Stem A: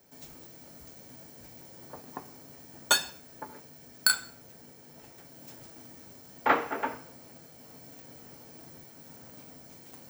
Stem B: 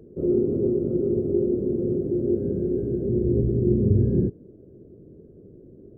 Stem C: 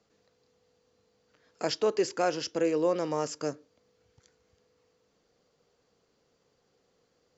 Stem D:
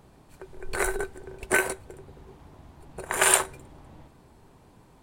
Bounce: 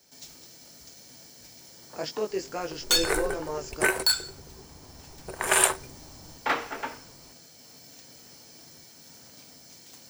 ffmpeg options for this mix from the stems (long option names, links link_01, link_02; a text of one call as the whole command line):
ffmpeg -i stem1.wav -i stem2.wav -i stem3.wav -i stem4.wav -filter_complex "[0:a]equalizer=frequency=5200:width=0.6:gain=14.5,volume=13dB,asoftclip=hard,volume=-13dB,volume=-4.5dB[link_01];[2:a]flanger=delay=17.5:depth=3.7:speed=2.2,adelay=350,volume=-1dB[link_02];[3:a]adelay=2300,volume=-1dB[link_03];[link_01][link_02][link_03]amix=inputs=3:normalize=0" out.wav